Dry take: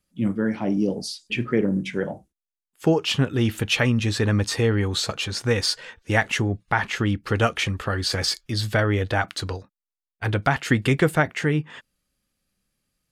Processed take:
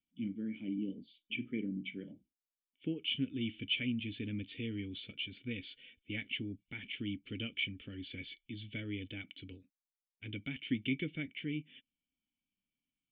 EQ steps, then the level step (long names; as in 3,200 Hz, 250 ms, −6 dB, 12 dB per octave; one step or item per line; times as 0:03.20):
formant resonators in series i
tilt shelving filter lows −9 dB, about 1,400 Hz
flat-topped bell 900 Hz −10 dB 1 octave
−1.0 dB